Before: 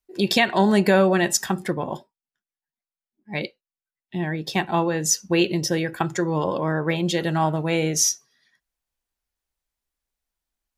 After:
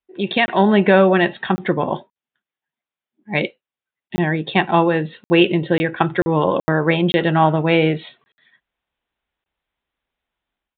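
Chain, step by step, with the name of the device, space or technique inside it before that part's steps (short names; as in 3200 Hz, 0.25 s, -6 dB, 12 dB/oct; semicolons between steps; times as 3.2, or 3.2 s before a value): call with lost packets (HPF 120 Hz 6 dB/oct; downsampling 8000 Hz; AGC gain up to 9.5 dB; packet loss bursts)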